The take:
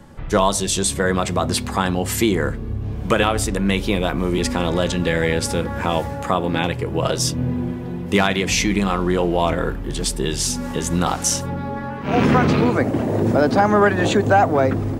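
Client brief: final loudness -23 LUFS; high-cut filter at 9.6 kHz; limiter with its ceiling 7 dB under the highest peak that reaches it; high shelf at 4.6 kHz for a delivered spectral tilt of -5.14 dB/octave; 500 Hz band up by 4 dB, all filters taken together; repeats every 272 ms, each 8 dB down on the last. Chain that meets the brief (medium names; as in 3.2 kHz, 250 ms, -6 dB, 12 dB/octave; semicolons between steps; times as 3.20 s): low-pass 9.6 kHz; peaking EQ 500 Hz +5 dB; treble shelf 4.6 kHz -3 dB; peak limiter -8 dBFS; feedback delay 272 ms, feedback 40%, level -8 dB; trim -3.5 dB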